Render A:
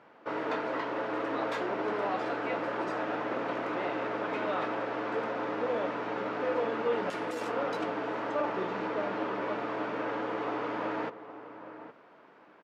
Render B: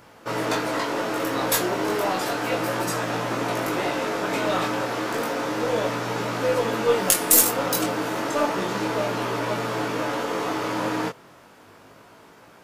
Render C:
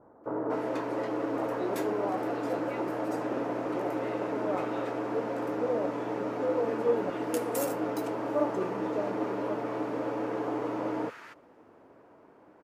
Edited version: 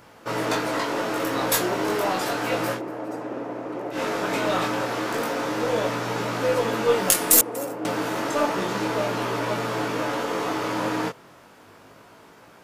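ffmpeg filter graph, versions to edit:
-filter_complex "[2:a]asplit=2[s0][s1];[1:a]asplit=3[s2][s3][s4];[s2]atrim=end=2.82[s5];[s0]atrim=start=2.72:end=4[s6];[s3]atrim=start=3.9:end=7.412[s7];[s1]atrim=start=7.408:end=7.852[s8];[s4]atrim=start=7.848[s9];[s5][s6]acrossfade=d=0.1:c1=tri:c2=tri[s10];[s10][s7]acrossfade=d=0.1:c1=tri:c2=tri[s11];[s11][s8]acrossfade=d=0.004:c1=hsin:c2=hsin[s12];[s12][s9]acrossfade=d=0.004:c1=hsin:c2=hsin"

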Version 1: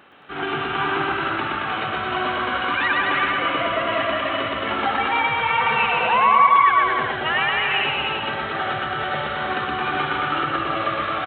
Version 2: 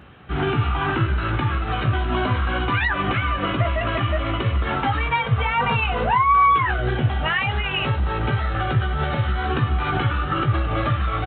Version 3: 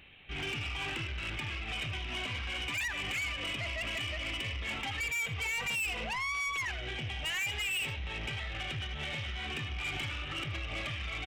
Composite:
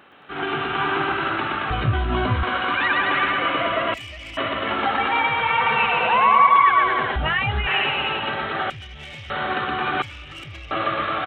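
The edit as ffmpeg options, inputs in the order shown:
-filter_complex "[1:a]asplit=2[s0][s1];[2:a]asplit=3[s2][s3][s4];[0:a]asplit=6[s5][s6][s7][s8][s9][s10];[s5]atrim=end=1.702[s11];[s0]atrim=start=1.698:end=2.432[s12];[s6]atrim=start=2.428:end=3.942[s13];[s2]atrim=start=3.938:end=4.372[s14];[s7]atrim=start=4.368:end=7.162[s15];[s1]atrim=start=7.158:end=7.672[s16];[s8]atrim=start=7.668:end=8.702[s17];[s3]atrim=start=8.698:end=9.302[s18];[s9]atrim=start=9.298:end=10.022[s19];[s4]atrim=start=10.018:end=10.712[s20];[s10]atrim=start=10.708[s21];[s11][s12]acrossfade=d=0.004:c1=hsin:c2=hsin[s22];[s22][s13]acrossfade=d=0.004:c1=hsin:c2=hsin[s23];[s23][s14]acrossfade=d=0.004:c1=hsin:c2=hsin[s24];[s24][s15]acrossfade=d=0.004:c1=hsin:c2=hsin[s25];[s25][s16]acrossfade=d=0.004:c1=hsin:c2=hsin[s26];[s26][s17]acrossfade=d=0.004:c1=hsin:c2=hsin[s27];[s27][s18]acrossfade=d=0.004:c1=hsin:c2=hsin[s28];[s28][s19]acrossfade=d=0.004:c1=hsin:c2=hsin[s29];[s29][s20]acrossfade=d=0.004:c1=hsin:c2=hsin[s30];[s30][s21]acrossfade=d=0.004:c1=hsin:c2=hsin"

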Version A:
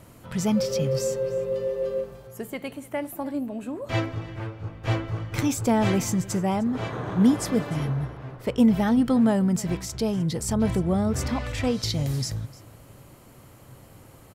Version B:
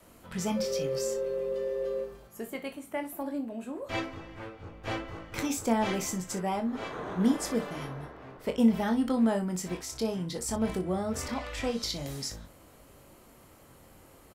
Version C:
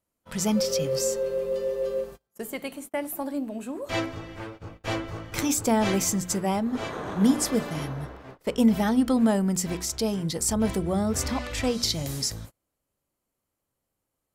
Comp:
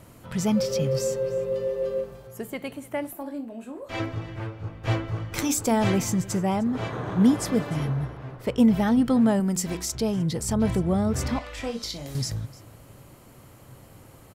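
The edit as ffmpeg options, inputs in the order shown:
-filter_complex "[1:a]asplit=2[s0][s1];[2:a]asplit=2[s2][s3];[0:a]asplit=5[s4][s5][s6][s7][s8];[s4]atrim=end=3.132[s9];[s0]atrim=start=3.128:end=4.002[s10];[s5]atrim=start=3.998:end=5.332[s11];[s2]atrim=start=5.328:end=5.842[s12];[s6]atrim=start=5.838:end=9.402[s13];[s3]atrim=start=9.398:end=9.952[s14];[s7]atrim=start=9.948:end=11.392[s15];[s1]atrim=start=11.388:end=12.152[s16];[s8]atrim=start=12.148[s17];[s9][s10]acrossfade=d=0.004:c1=hsin:c2=hsin[s18];[s18][s11]acrossfade=d=0.004:c1=hsin:c2=hsin[s19];[s19][s12]acrossfade=d=0.004:c1=hsin:c2=hsin[s20];[s20][s13]acrossfade=d=0.004:c1=hsin:c2=hsin[s21];[s21][s14]acrossfade=d=0.004:c1=hsin:c2=hsin[s22];[s22][s15]acrossfade=d=0.004:c1=hsin:c2=hsin[s23];[s23][s16]acrossfade=d=0.004:c1=hsin:c2=hsin[s24];[s24][s17]acrossfade=d=0.004:c1=hsin:c2=hsin"

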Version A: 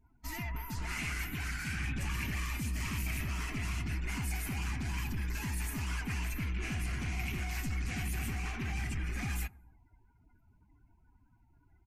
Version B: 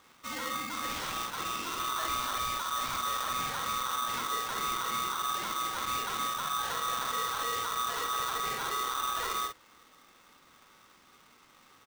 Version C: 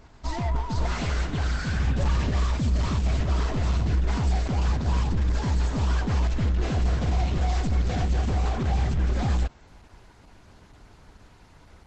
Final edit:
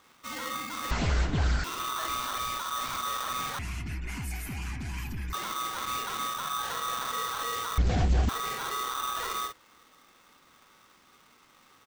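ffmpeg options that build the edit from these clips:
-filter_complex "[2:a]asplit=2[s0][s1];[1:a]asplit=4[s2][s3][s4][s5];[s2]atrim=end=0.912[s6];[s0]atrim=start=0.908:end=1.642[s7];[s3]atrim=start=1.638:end=3.592[s8];[0:a]atrim=start=3.588:end=5.332[s9];[s4]atrim=start=5.328:end=7.782[s10];[s1]atrim=start=7.778:end=8.292[s11];[s5]atrim=start=8.288[s12];[s6][s7]acrossfade=d=0.004:c1=hsin:c2=hsin[s13];[s13][s8]acrossfade=d=0.004:c1=hsin:c2=hsin[s14];[s14][s9]acrossfade=d=0.004:c1=hsin:c2=hsin[s15];[s15][s10]acrossfade=d=0.004:c1=hsin:c2=hsin[s16];[s16][s11]acrossfade=d=0.004:c1=hsin:c2=hsin[s17];[s17][s12]acrossfade=d=0.004:c1=hsin:c2=hsin"

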